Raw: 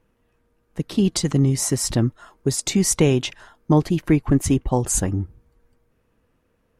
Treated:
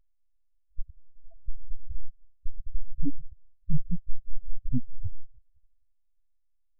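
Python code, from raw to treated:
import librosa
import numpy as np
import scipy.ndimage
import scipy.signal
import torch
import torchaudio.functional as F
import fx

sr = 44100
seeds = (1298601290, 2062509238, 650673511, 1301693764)

y = fx.stiff_resonator(x, sr, f0_hz=330.0, decay_s=0.28, stiffness=0.002, at=(0.9, 1.49))
y = np.abs(y)
y = fx.spec_gate(y, sr, threshold_db=-10, keep='strong')
y = y * librosa.db_to_amplitude(2.0)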